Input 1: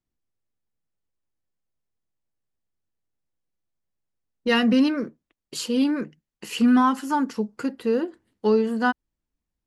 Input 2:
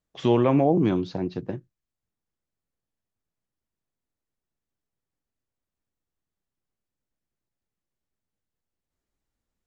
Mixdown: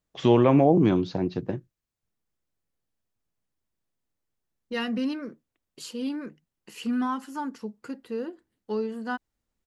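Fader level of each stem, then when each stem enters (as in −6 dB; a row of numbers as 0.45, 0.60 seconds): −9.5, +1.5 decibels; 0.25, 0.00 seconds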